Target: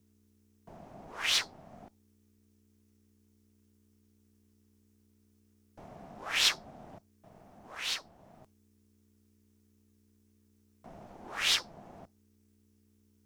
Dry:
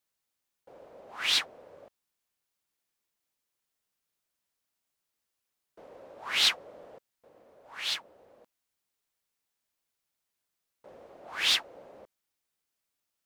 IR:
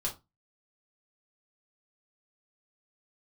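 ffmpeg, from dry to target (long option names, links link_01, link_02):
-filter_complex "[0:a]aeval=exprs='val(0)+0.000355*(sin(2*PI*60*n/s)+sin(2*PI*2*60*n/s)/2+sin(2*PI*3*60*n/s)/3+sin(2*PI*4*60*n/s)/4+sin(2*PI*5*60*n/s)/5)':channel_layout=same,asplit=2[link_01][link_02];[link_02]acompressor=threshold=-52dB:ratio=6,volume=-2.5dB[link_03];[link_01][link_03]amix=inputs=2:normalize=0,aeval=exprs='val(0)*sin(2*PI*250*n/s)':channel_layout=same,afreqshift=-100,asplit=2[link_04][link_05];[link_05]highshelf=frequency=3700:width_type=q:width=3:gain=13.5[link_06];[1:a]atrim=start_sample=2205[link_07];[link_06][link_07]afir=irnorm=-1:irlink=0,volume=-22.5dB[link_08];[link_04][link_08]amix=inputs=2:normalize=0"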